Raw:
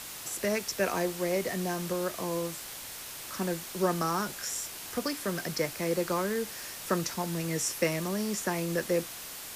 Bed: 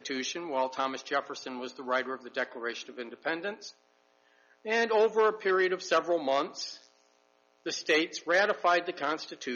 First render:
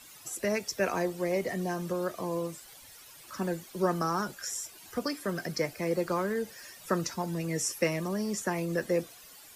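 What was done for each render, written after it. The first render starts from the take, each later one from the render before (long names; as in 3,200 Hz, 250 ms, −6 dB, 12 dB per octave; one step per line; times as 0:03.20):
broadband denoise 14 dB, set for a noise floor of −42 dBFS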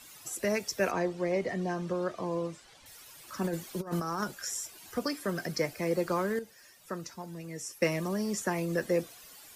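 0:00.91–0:02.86: high-frequency loss of the air 86 metres
0:03.44–0:04.24: compressor whose output falls as the input rises −32 dBFS, ratio −0.5
0:06.39–0:07.82: clip gain −9 dB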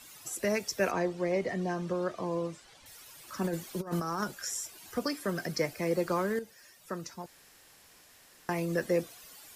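0:07.26–0:08.49: fill with room tone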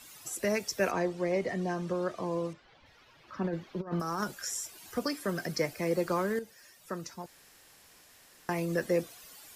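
0:02.53–0:04.00: high-frequency loss of the air 260 metres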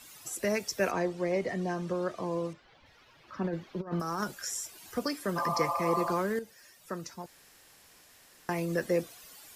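0:05.39–0:06.10: healed spectral selection 520–1,300 Hz after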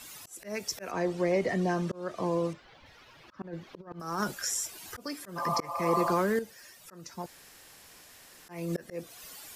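volume swells 349 ms
in parallel at −3 dB: brickwall limiter −26.5 dBFS, peak gain reduction 9.5 dB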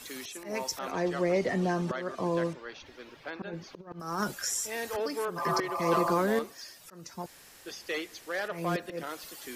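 mix in bed −8.5 dB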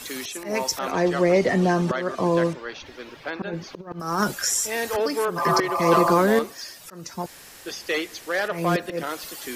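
level +8.5 dB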